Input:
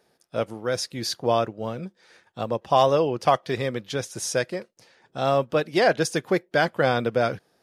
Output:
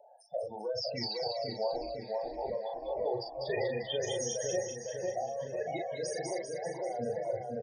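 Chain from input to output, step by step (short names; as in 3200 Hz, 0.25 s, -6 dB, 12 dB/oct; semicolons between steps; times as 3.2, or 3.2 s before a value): resonant low shelf 480 Hz -10 dB, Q 1.5; de-hum 66.22 Hz, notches 7; negative-ratio compressor -31 dBFS, ratio -1; loudest bins only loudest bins 8; 1.73–2.5 ring modulator 140 Hz; Butterworth band-stop 1300 Hz, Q 1.1; doubler 38 ms -4 dB; split-band echo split 2000 Hz, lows 0.504 s, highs 0.196 s, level -3.5 dB; three-band squash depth 40%; gain -3.5 dB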